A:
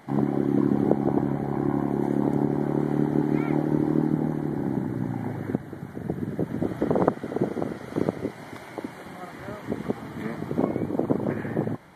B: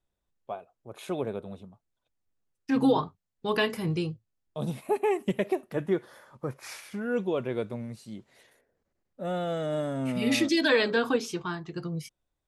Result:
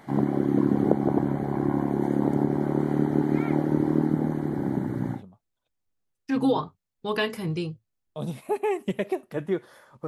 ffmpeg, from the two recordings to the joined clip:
ffmpeg -i cue0.wav -i cue1.wav -filter_complex "[0:a]apad=whole_dur=10.07,atrim=end=10.07,atrim=end=5.23,asetpts=PTS-STARTPTS[link_01];[1:a]atrim=start=1.51:end=6.47,asetpts=PTS-STARTPTS[link_02];[link_01][link_02]acrossfade=duration=0.12:curve1=tri:curve2=tri" out.wav

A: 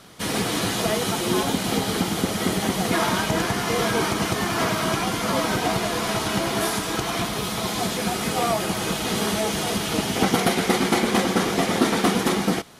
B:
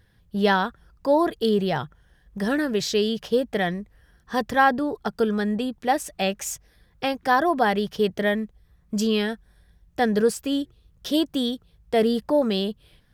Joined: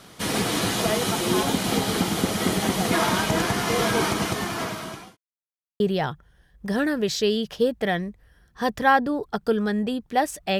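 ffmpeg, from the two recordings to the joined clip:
ffmpeg -i cue0.wav -i cue1.wav -filter_complex "[0:a]apad=whole_dur=10.59,atrim=end=10.59,asplit=2[link_01][link_02];[link_01]atrim=end=5.17,asetpts=PTS-STARTPTS,afade=type=out:start_time=4.06:duration=1.11[link_03];[link_02]atrim=start=5.17:end=5.8,asetpts=PTS-STARTPTS,volume=0[link_04];[1:a]atrim=start=1.52:end=6.31,asetpts=PTS-STARTPTS,afade=type=in:duration=0.004:curve=hsin[link_05];[link_03][link_04][link_05]concat=n=3:v=0:a=1" out.wav

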